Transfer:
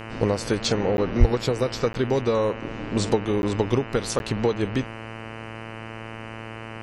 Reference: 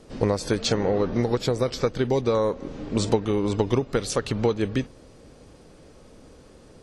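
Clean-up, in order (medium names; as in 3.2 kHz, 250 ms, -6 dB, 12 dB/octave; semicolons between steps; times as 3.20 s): de-hum 112 Hz, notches 27; 1.19–1.31 s: high-pass 140 Hz 24 dB/octave; interpolate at 0.97/1.93/3.42/4.19 s, 11 ms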